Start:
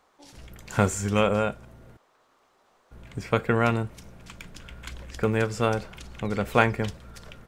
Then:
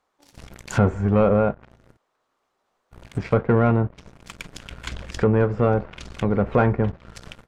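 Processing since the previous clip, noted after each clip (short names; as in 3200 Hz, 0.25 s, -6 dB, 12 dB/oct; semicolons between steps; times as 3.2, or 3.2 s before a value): sample leveller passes 3; treble ducked by the level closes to 1100 Hz, closed at -15 dBFS; gain -3.5 dB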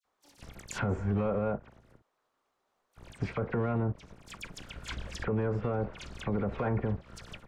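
dispersion lows, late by 51 ms, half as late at 2500 Hz; limiter -16 dBFS, peak gain reduction 11.5 dB; gain -5.5 dB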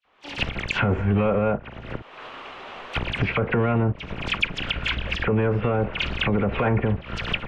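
recorder AGC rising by 52 dB/s; synth low-pass 2800 Hz, resonance Q 3; gain +8.5 dB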